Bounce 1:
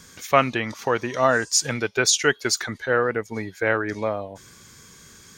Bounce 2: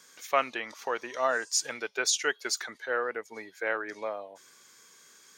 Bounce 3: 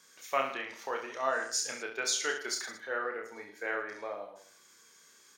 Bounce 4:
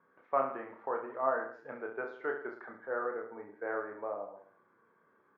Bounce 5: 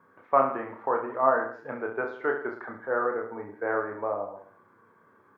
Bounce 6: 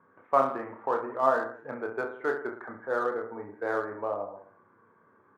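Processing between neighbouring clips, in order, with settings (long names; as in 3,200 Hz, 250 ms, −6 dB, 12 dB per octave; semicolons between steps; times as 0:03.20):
high-pass filter 440 Hz 12 dB per octave; level −7.5 dB
reverse bouncing-ball delay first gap 30 ms, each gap 1.2×, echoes 5; level −5.5 dB
low-pass filter 1,300 Hz 24 dB per octave; level +1.5 dB
graphic EQ with 15 bands 100 Hz +11 dB, 250 Hz +3 dB, 1,000 Hz +3 dB; level +7 dB
adaptive Wiener filter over 9 samples; level −1.5 dB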